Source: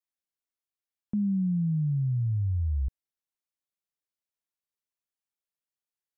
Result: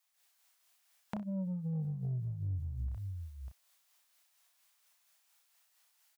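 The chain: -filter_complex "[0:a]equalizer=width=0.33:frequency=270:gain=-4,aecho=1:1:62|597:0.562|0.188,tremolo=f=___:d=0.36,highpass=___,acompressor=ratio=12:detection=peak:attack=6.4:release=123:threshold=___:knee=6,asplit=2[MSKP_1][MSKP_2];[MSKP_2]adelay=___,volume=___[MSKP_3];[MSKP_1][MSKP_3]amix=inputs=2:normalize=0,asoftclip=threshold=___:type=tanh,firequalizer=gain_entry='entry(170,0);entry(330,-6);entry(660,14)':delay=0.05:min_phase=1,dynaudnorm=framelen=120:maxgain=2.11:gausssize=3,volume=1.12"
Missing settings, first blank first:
4.3, 100, 0.00891, 32, 0.447, 0.0141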